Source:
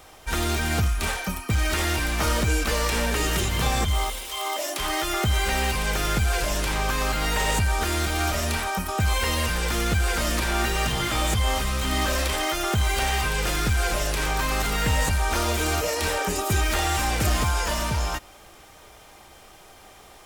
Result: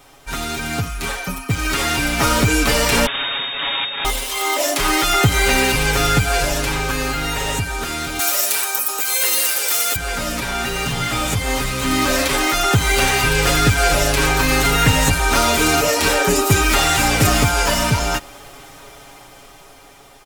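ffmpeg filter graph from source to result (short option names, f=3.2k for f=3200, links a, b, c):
-filter_complex "[0:a]asettb=1/sr,asplit=3[a][b][c];[a]atrim=end=3.064[d];[b]atrim=start=3.06:end=4.05,asetpts=PTS-STARTPTS,afade=t=in:d=0.004:c=qsin,afade=t=out:st=0.986:d=0.004:c=qsin,highpass=410,aeval=exprs='abs(val(0))':c=same,lowpass=f=3.1k:t=q:w=0.5098,lowpass=f=3.1k:t=q:w=0.6013,lowpass=f=3.1k:t=q:w=0.9,lowpass=f=3.1k:t=q:w=2.563,afreqshift=-3700[e];[c]atrim=start=4.046[f];[d][e]acrossfade=d=0.004:c1=hsin:c2=qsin[g];[g][f]acrossfade=d=0.004:c1=qsin:c2=hsin,asettb=1/sr,asplit=3[h][i][j];[h]atrim=end=8.194[k];[i]atrim=start=8.19:end=9.96,asetpts=PTS-STARTPTS,afade=t=in:d=0.004:c=qsin,afade=t=out:st=1.766:d=0.004:c=qsin,highpass=f=370:w=0.5412,highpass=f=370:w=1.3066,aemphasis=mode=production:type=75fm[l];[j]atrim=start=9.956[m];[k][l]acrossfade=d=0.004:c1=hsin:c2=qsin[n];[n][m]acrossfade=d=0.004:c1=qsin:c2=hsin,aecho=1:1:7.2:0.8,dynaudnorm=f=560:g=7:m=11.5dB,equalizer=f=240:w=1.6:g=3,volume=-1dB"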